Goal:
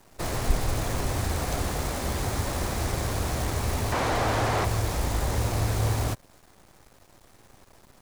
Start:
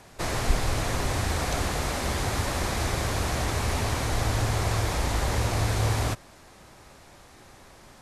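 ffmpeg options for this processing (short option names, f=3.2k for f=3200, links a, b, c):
-filter_complex "[0:a]equalizer=f=2.7k:t=o:w=2.8:g=-5,acrusher=bits=7:dc=4:mix=0:aa=0.000001,asettb=1/sr,asplit=3[a][b][c];[a]atrim=end=3.924[d];[b]atrim=start=3.92:end=4.65,asetpts=PTS-STARTPTS,afade=t=in:d=0.004:c=qsin,afade=t=out:st=0.726:d=0.004:c=qsin,asplit=2[e][f];[f]highpass=f=720:p=1,volume=21dB,asoftclip=type=tanh:threshold=-14dB[g];[e][g]amix=inputs=2:normalize=0,lowpass=f=1.6k:p=1,volume=-6dB[h];[c]atrim=start=4.646[i];[d][h]acrossfade=d=0.004:c1=hsin:c2=qsin[j];[j][i]acrossfade=d=0.004:c1=qsin:c2=hsin"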